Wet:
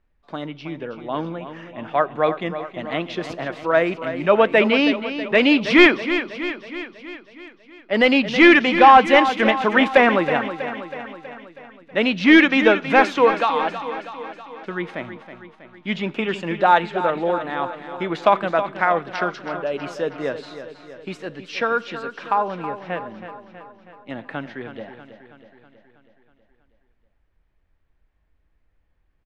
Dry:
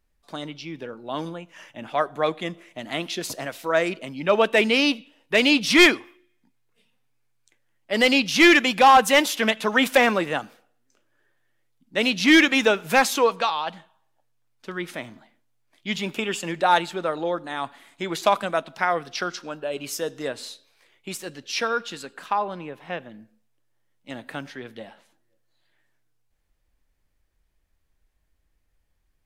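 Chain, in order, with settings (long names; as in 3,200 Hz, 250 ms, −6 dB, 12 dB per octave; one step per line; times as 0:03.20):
low-pass filter 2,400 Hz 12 dB per octave
repeating echo 322 ms, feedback 58%, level −11 dB
level +4 dB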